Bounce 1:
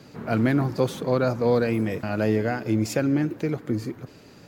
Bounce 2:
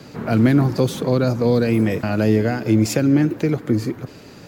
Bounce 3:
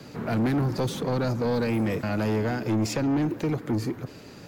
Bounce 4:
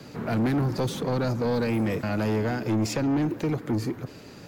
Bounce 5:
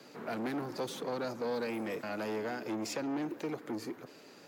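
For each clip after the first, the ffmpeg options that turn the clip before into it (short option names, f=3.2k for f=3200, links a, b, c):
-filter_complex "[0:a]acrossover=split=390|3000[a][b][c];[b]acompressor=threshold=-31dB:ratio=6[d];[a][d][c]amix=inputs=3:normalize=0,volume=7.5dB"
-filter_complex "[0:a]acrossover=split=440|6700[a][b][c];[c]alimiter=level_in=6.5dB:limit=-24dB:level=0:latency=1:release=305,volume=-6.5dB[d];[a][b][d]amix=inputs=3:normalize=0,asoftclip=type=tanh:threshold=-17dB,volume=-3.5dB"
-af anull
-af "highpass=310,volume=-7dB"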